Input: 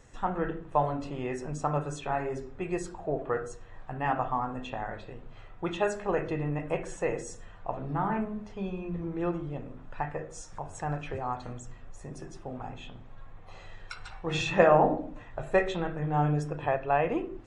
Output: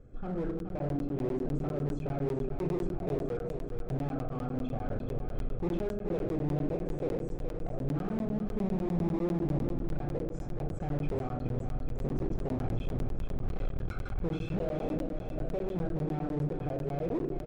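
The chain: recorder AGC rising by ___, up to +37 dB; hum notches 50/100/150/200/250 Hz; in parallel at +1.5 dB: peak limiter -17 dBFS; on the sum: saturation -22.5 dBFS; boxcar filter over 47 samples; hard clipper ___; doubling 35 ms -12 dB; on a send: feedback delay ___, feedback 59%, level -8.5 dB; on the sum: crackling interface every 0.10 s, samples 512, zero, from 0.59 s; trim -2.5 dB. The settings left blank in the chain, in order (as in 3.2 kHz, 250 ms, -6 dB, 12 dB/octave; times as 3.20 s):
8 dB/s, -27 dBFS, 421 ms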